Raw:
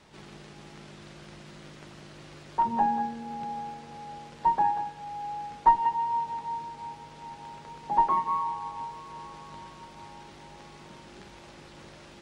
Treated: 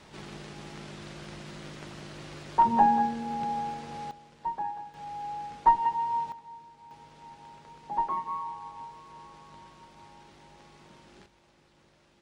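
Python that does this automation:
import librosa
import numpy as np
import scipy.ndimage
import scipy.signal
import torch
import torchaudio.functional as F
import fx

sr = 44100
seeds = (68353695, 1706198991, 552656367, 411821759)

y = fx.gain(x, sr, db=fx.steps((0.0, 4.0), (4.11, -9.0), (4.94, -1.0), (6.32, -12.5), (6.91, -6.0), (11.26, -14.5)))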